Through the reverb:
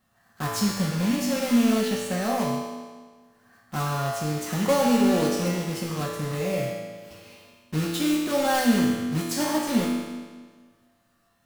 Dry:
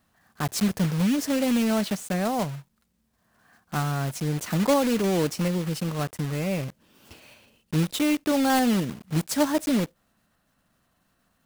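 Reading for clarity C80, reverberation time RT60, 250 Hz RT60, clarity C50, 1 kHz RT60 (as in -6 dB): 2.0 dB, 1.5 s, 1.5 s, 0.0 dB, 1.5 s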